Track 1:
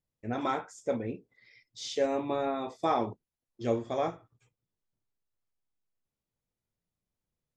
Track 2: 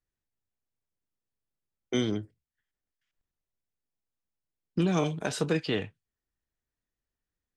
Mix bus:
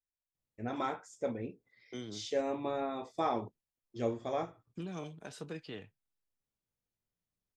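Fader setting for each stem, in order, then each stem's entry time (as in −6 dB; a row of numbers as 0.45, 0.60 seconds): −4.5, −15.5 decibels; 0.35, 0.00 seconds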